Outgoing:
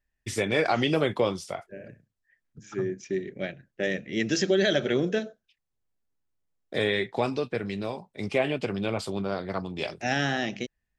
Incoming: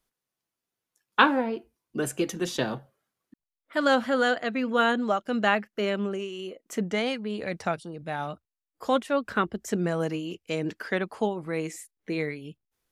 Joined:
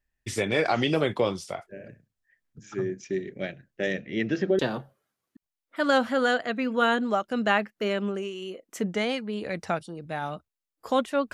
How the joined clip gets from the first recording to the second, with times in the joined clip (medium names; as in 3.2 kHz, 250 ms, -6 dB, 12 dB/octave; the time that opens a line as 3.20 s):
outgoing
3.92–4.59 s: low-pass 6.2 kHz -> 1.1 kHz
4.59 s: go over to incoming from 2.56 s